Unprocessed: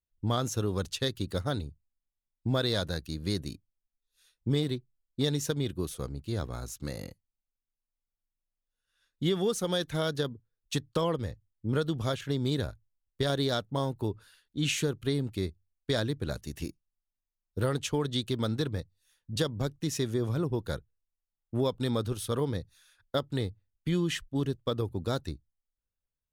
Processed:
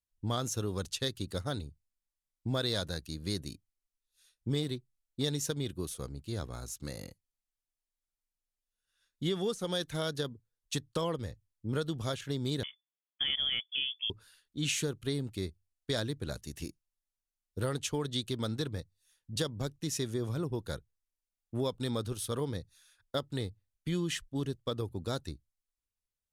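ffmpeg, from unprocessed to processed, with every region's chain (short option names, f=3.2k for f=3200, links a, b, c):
-filter_complex "[0:a]asettb=1/sr,asplit=3[a][b][c];[a]atrim=end=9.274[d];[b]atrim=start=9.27:end=9.75,asetpts=PTS-STARTPTS,afade=t=in:d=0.004:c=qsin,afade=t=out:st=0.476:d=0.004:c=qsin,lowpass=12k,deesser=0.9[e];[c]atrim=start=9.746[f];[d][e]acrossfade=d=0.004:c1=hsin:c2=qsin[g];[g][f]acrossfade=d=0.004:c1=qsin:c2=hsin,asettb=1/sr,asplit=3[h][i][j];[h]atrim=end=12.634[k];[i]atrim=start=12.63:end=14.1,asetpts=PTS-STARTPTS,afade=t=in:d=0.004:c=qsin,afade=t=out:st=1.466:d=0.004:c=qsin,highpass=f=170:w=0.5412,highpass=f=170:w=1.3066,lowpass=f=3.1k:t=q:w=0.5098,lowpass=f=3.1k:t=q:w=0.6013,lowpass=f=3.1k:t=q:w=0.9,lowpass=f=3.1k:t=q:w=2.563,afreqshift=-3600[l];[j]atrim=start=14.096[m];[k][l]acrossfade=d=0.004:c1=hsin:c2=qsin[n];[n][m]acrossfade=d=0.004:c1=qsin:c2=hsin,lowpass=12k,highshelf=f=5.1k:g=8,volume=-4.5dB"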